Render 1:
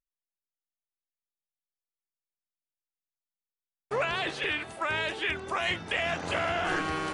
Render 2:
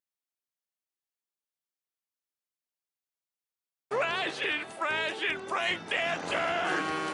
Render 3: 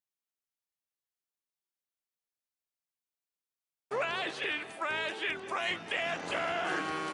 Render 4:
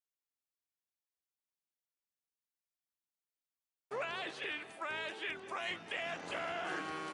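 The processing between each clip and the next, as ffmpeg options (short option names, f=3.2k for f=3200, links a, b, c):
-af "highpass=190"
-filter_complex "[0:a]asplit=2[a][b];[b]adelay=204.1,volume=-17dB,highshelf=f=4k:g=-4.59[c];[a][c]amix=inputs=2:normalize=0,volume=-3.5dB"
-af "asoftclip=type=hard:threshold=-20dB,volume=-6.5dB"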